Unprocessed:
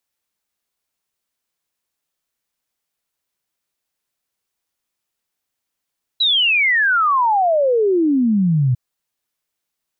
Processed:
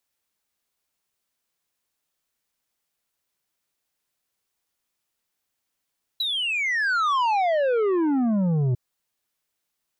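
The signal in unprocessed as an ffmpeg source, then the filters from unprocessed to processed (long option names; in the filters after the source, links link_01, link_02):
-f lavfi -i "aevalsrc='0.237*clip(min(t,2.55-t)/0.01,0,1)*sin(2*PI*4000*2.55/log(120/4000)*(exp(log(120/4000)*t/2.55)-1))':duration=2.55:sample_rate=44100"
-filter_complex "[0:a]acrossover=split=1300[link_01][link_02];[link_02]acompressor=threshold=-25dB:ratio=6[link_03];[link_01][link_03]amix=inputs=2:normalize=0,asoftclip=type=tanh:threshold=-20dB"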